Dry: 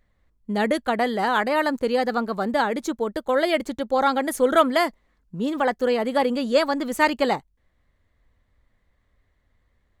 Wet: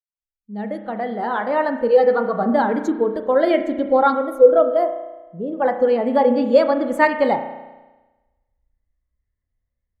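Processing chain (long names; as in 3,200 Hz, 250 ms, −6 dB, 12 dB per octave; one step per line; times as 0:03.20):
fade in at the beginning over 2.11 s
0:01.90–0:02.44: comb filter 6.2 ms, depth 51%
in parallel at 0 dB: downward compressor, threshold −27 dBFS, peak gain reduction 15 dB
0:04.14–0:05.62: on the sum: octave-band graphic EQ 125/250/500/1,000/2,000/4,000/8,000 Hz −4/−8/+5/−8/−8/−7/−10 dB
on a send at −4 dB: convolution reverb RT60 1.7 s, pre-delay 34 ms
on the sum: every bin expanded away from the loudest bin 1.5 to 1
level +2.5 dB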